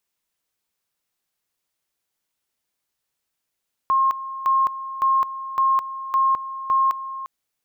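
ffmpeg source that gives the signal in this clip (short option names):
-f lavfi -i "aevalsrc='pow(10,(-15-13.5*gte(mod(t,0.56),0.21))/20)*sin(2*PI*1070*t)':d=3.36:s=44100"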